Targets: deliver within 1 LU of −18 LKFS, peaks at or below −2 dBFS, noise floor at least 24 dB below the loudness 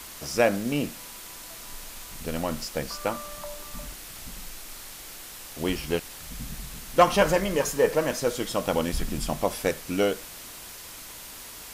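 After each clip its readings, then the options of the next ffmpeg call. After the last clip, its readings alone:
background noise floor −43 dBFS; target noise floor −51 dBFS; integrated loudness −27.0 LKFS; sample peak −8.0 dBFS; target loudness −18.0 LKFS
→ -af "afftdn=noise_reduction=8:noise_floor=-43"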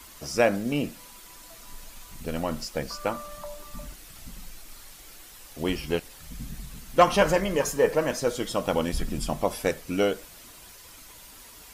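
background noise floor −48 dBFS; target noise floor −51 dBFS
→ -af "afftdn=noise_reduction=6:noise_floor=-48"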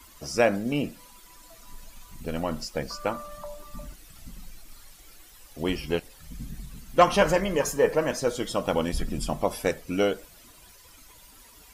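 background noise floor −52 dBFS; integrated loudness −27.0 LKFS; sample peak −8.0 dBFS; target loudness −18.0 LKFS
→ -af "volume=9dB,alimiter=limit=-2dB:level=0:latency=1"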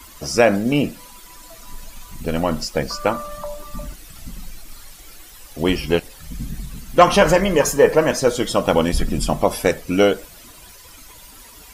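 integrated loudness −18.5 LKFS; sample peak −2.0 dBFS; background noise floor −43 dBFS

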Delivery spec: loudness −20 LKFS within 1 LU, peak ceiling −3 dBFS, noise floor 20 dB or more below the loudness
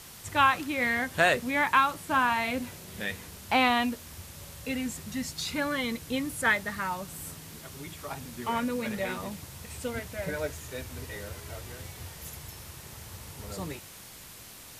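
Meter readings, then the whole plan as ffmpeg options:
background noise floor −48 dBFS; target noise floor −50 dBFS; integrated loudness −29.5 LKFS; sample peak −8.5 dBFS; target loudness −20.0 LKFS
→ -af "afftdn=noise_reduction=6:noise_floor=-48"
-af "volume=9.5dB,alimiter=limit=-3dB:level=0:latency=1"

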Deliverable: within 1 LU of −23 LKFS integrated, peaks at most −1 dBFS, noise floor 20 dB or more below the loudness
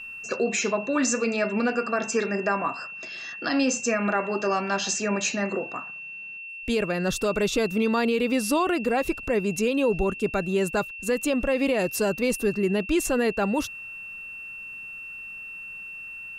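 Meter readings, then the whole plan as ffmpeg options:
interfering tone 2,700 Hz; level of the tone −36 dBFS; integrated loudness −26.0 LKFS; sample peak −13.5 dBFS; target loudness −23.0 LKFS
→ -af "bandreject=frequency=2700:width=30"
-af "volume=3dB"

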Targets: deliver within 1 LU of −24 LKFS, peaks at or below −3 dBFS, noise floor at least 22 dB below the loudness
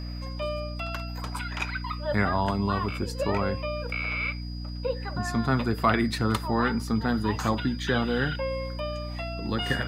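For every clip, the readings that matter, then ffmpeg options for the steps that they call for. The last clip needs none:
mains hum 60 Hz; hum harmonics up to 300 Hz; level of the hum −32 dBFS; interfering tone 4,900 Hz; level of the tone −45 dBFS; integrated loudness −28.5 LKFS; sample peak −9.0 dBFS; target loudness −24.0 LKFS
→ -af "bandreject=frequency=60:width_type=h:width=6,bandreject=frequency=120:width_type=h:width=6,bandreject=frequency=180:width_type=h:width=6,bandreject=frequency=240:width_type=h:width=6,bandreject=frequency=300:width_type=h:width=6"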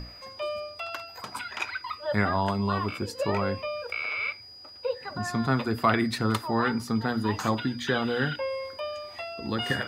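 mains hum none found; interfering tone 4,900 Hz; level of the tone −45 dBFS
→ -af "bandreject=frequency=4900:width=30"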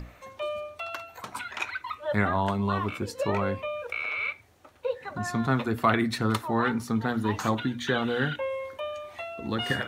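interfering tone none found; integrated loudness −29.0 LKFS; sample peak −9.0 dBFS; target loudness −24.0 LKFS
→ -af "volume=5dB"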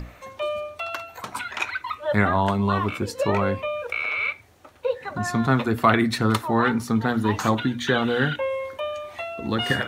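integrated loudness −24.0 LKFS; sample peak −4.0 dBFS; background noise floor −49 dBFS

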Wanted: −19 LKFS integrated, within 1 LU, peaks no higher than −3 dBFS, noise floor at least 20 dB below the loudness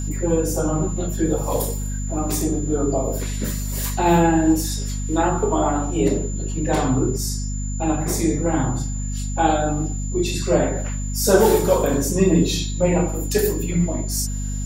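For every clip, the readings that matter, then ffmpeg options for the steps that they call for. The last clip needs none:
mains hum 50 Hz; hum harmonics up to 250 Hz; level of the hum −23 dBFS; interfering tone 7,100 Hz; level of the tone −34 dBFS; integrated loudness −21.0 LKFS; sample peak −2.0 dBFS; target loudness −19.0 LKFS
→ -af "bandreject=frequency=50:width_type=h:width=4,bandreject=frequency=100:width_type=h:width=4,bandreject=frequency=150:width_type=h:width=4,bandreject=frequency=200:width_type=h:width=4,bandreject=frequency=250:width_type=h:width=4"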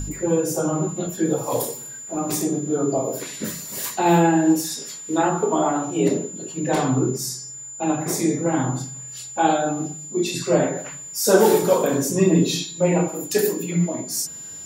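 mains hum none found; interfering tone 7,100 Hz; level of the tone −34 dBFS
→ -af "bandreject=frequency=7100:width=30"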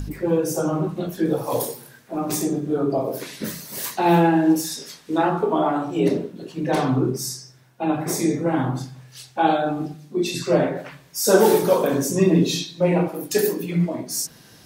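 interfering tone none found; integrated loudness −22.0 LKFS; sample peak −2.0 dBFS; target loudness −19.0 LKFS
→ -af "volume=3dB,alimiter=limit=-3dB:level=0:latency=1"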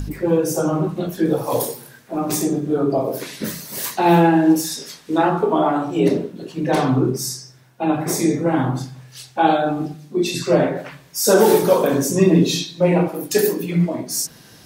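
integrated loudness −19.0 LKFS; sample peak −3.0 dBFS; background noise floor −47 dBFS

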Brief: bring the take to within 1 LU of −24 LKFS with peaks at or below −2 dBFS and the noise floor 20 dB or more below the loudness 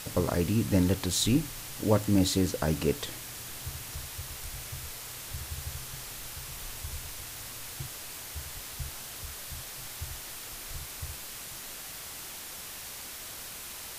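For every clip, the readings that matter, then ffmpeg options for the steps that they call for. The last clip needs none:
background noise floor −42 dBFS; target noise floor −53 dBFS; integrated loudness −33.0 LKFS; sample peak −12.0 dBFS; target loudness −24.0 LKFS
→ -af "afftdn=noise_reduction=11:noise_floor=-42"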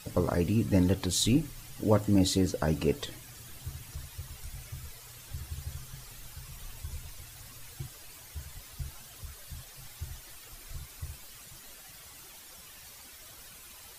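background noise floor −50 dBFS; target noise floor −51 dBFS
→ -af "afftdn=noise_reduction=6:noise_floor=-50"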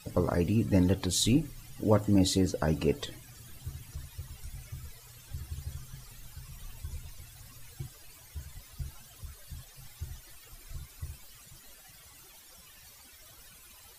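background noise floor −54 dBFS; integrated loudness −29.0 LKFS; sample peak −12.0 dBFS; target loudness −24.0 LKFS
→ -af "volume=5dB"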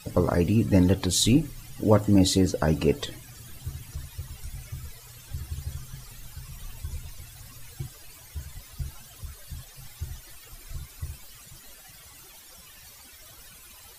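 integrated loudness −24.0 LKFS; sample peak −7.0 dBFS; background noise floor −49 dBFS

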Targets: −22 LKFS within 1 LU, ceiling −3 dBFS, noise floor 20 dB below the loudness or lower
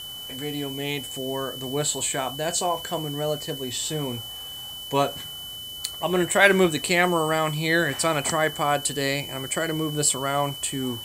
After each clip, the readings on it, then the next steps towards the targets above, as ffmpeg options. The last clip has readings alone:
interfering tone 3,000 Hz; level of the tone −35 dBFS; background noise floor −37 dBFS; target noise floor −45 dBFS; integrated loudness −24.5 LKFS; sample peak −3.5 dBFS; target loudness −22.0 LKFS
→ -af "bandreject=frequency=3000:width=30"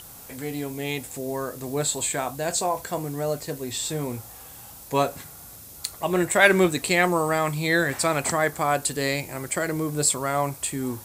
interfering tone none found; background noise floor −44 dBFS; target noise floor −45 dBFS
→ -af "afftdn=noise_reduction=6:noise_floor=-44"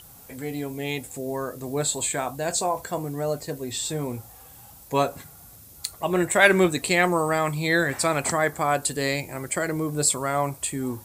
background noise floor −48 dBFS; integrated loudness −24.5 LKFS; sample peak −3.5 dBFS; target loudness −22.0 LKFS
→ -af "volume=2.5dB,alimiter=limit=-3dB:level=0:latency=1"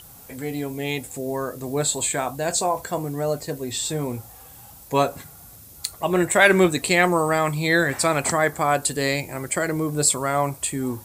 integrated loudness −22.5 LKFS; sample peak −3.0 dBFS; background noise floor −45 dBFS

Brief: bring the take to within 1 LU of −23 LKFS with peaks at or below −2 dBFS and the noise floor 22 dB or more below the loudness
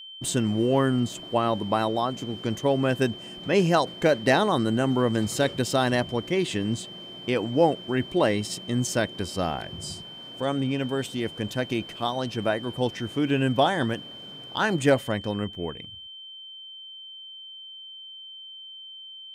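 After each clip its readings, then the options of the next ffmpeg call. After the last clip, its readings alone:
interfering tone 3,100 Hz; level of the tone −40 dBFS; integrated loudness −25.5 LKFS; sample peak −8.5 dBFS; target loudness −23.0 LKFS
→ -af "bandreject=frequency=3100:width=30"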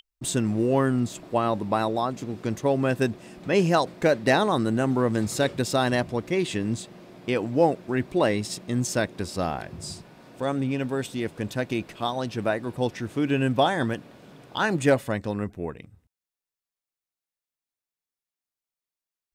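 interfering tone none found; integrated loudness −25.5 LKFS; sample peak −8.5 dBFS; target loudness −23.0 LKFS
→ -af "volume=2.5dB"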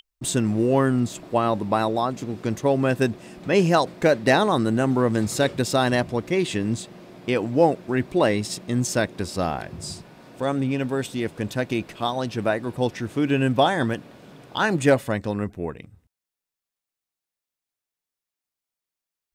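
integrated loudness −23.0 LKFS; sample peak −6.0 dBFS; background noise floor −88 dBFS

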